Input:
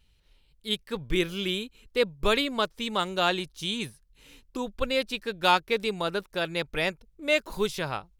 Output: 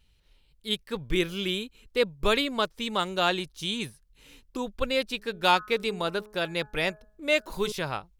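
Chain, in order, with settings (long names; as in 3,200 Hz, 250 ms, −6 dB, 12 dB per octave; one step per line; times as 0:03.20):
0:05.16–0:07.72: hum removal 211.5 Hz, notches 8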